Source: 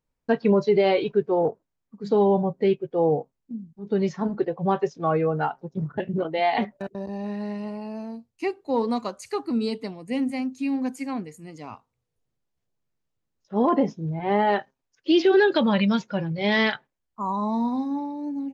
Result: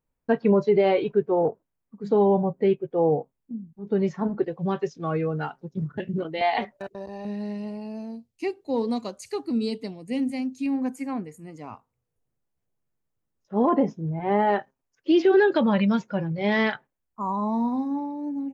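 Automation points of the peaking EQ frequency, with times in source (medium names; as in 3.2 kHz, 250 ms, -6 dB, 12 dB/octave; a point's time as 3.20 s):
peaking EQ -8.5 dB 1.4 oct
4.7 kHz
from 4.44 s 780 Hz
from 6.41 s 200 Hz
from 7.25 s 1.2 kHz
from 10.66 s 4.1 kHz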